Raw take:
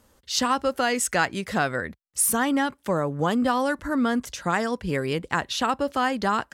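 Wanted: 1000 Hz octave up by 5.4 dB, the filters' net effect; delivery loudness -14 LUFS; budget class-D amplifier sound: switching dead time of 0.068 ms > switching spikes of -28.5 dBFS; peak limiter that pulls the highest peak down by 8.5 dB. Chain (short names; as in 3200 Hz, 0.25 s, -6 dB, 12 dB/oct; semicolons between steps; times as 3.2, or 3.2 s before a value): bell 1000 Hz +7 dB; limiter -13.5 dBFS; switching dead time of 0.068 ms; switching spikes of -28.5 dBFS; gain +11 dB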